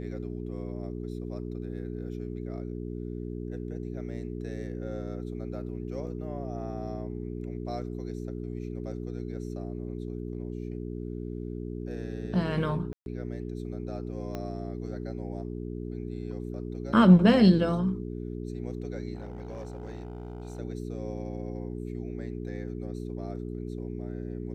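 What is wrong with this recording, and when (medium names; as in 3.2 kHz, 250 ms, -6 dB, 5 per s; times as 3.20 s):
hum 60 Hz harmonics 7 -36 dBFS
12.93–13.06 s: dropout 131 ms
14.35 s: pop -22 dBFS
19.15–20.60 s: clipped -34 dBFS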